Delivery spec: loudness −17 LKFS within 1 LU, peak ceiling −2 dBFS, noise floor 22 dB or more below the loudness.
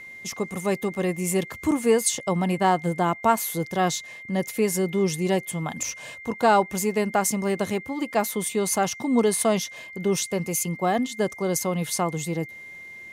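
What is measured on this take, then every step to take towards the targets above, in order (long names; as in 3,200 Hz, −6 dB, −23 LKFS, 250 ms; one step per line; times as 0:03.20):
interfering tone 2,100 Hz; level of the tone −39 dBFS; integrated loudness −24.5 LKFS; sample peak −7.5 dBFS; target loudness −17.0 LKFS
→ notch filter 2,100 Hz, Q 30
level +7.5 dB
brickwall limiter −2 dBFS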